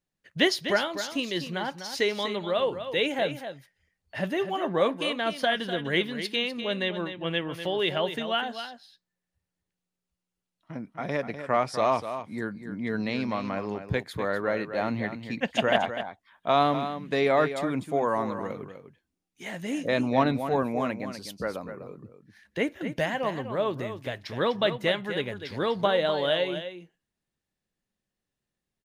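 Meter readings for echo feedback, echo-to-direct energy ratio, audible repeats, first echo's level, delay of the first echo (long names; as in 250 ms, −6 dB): repeats not evenly spaced, −10.0 dB, 1, −10.0 dB, 249 ms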